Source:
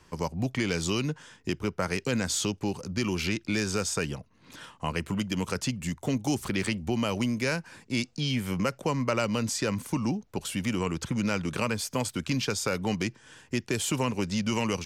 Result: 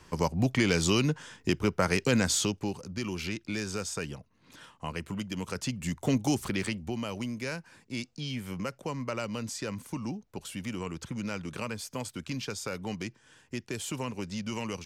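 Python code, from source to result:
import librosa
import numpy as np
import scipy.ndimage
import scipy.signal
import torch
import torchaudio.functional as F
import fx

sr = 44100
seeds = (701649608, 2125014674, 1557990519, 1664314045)

y = fx.gain(x, sr, db=fx.line((2.23, 3.0), (2.89, -5.5), (5.45, -5.5), (6.14, 2.0), (7.05, -7.0)))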